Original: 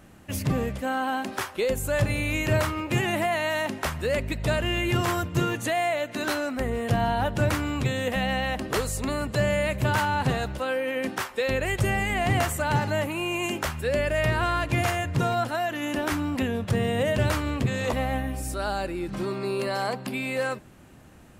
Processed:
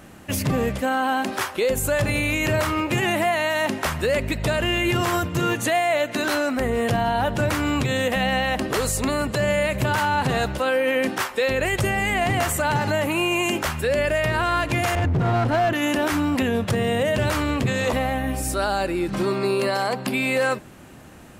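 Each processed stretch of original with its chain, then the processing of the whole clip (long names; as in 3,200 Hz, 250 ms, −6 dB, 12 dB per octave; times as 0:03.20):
0:14.95–0:15.73: RIAA equalisation playback + downward compressor 4 to 1, threshold −20 dBFS + gain into a clipping stage and back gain 23 dB
whole clip: low-shelf EQ 130 Hz −6 dB; brickwall limiter −21.5 dBFS; level +8 dB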